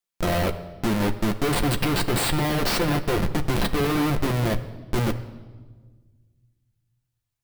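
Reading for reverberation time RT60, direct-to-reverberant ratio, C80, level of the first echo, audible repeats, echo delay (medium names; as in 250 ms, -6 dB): 1.5 s, 6.0 dB, 15.5 dB, no echo, no echo, no echo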